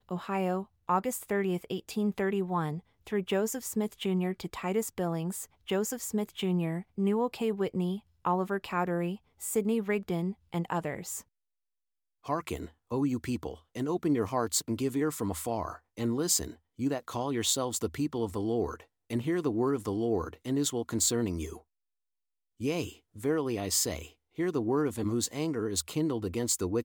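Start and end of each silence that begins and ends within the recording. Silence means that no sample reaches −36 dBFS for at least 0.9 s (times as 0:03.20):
0:11.20–0:12.29
0:21.57–0:22.61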